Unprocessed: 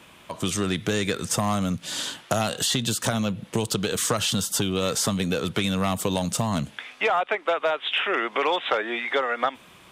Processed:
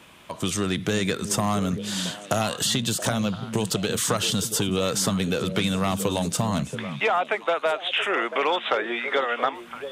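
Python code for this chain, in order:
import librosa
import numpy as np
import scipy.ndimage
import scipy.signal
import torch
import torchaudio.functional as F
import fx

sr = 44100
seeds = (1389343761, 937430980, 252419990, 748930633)

y = fx.echo_stepped(x, sr, ms=338, hz=170.0, octaves=1.4, feedback_pct=70, wet_db=-5.5)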